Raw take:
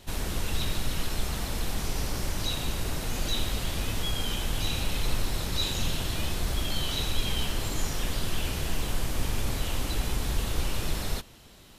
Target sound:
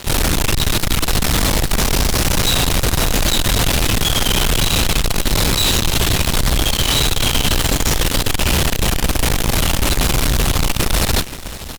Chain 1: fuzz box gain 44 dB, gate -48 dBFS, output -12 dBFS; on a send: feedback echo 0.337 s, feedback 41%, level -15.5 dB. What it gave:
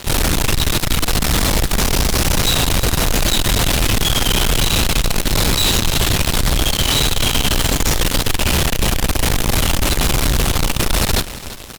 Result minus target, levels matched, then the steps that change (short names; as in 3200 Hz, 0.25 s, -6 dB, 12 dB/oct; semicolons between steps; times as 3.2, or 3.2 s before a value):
echo 0.187 s early
change: feedback echo 0.524 s, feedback 41%, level -15.5 dB